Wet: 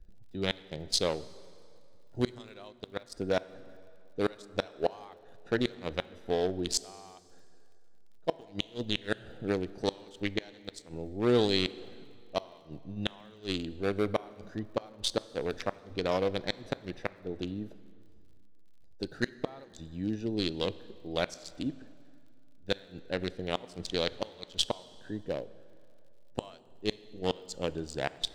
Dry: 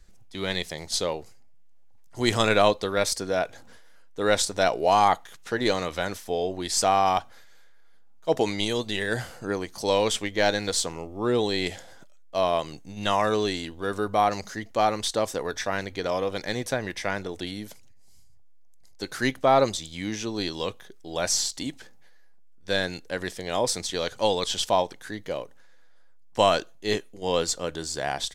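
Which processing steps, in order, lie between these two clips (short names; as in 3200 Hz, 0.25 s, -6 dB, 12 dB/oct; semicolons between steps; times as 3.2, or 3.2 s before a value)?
Wiener smoothing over 41 samples; flipped gate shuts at -14 dBFS, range -30 dB; crackle 59/s -59 dBFS; bell 3900 Hz +5 dB 1 oct; plate-style reverb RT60 2.5 s, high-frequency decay 0.75×, DRR 17 dB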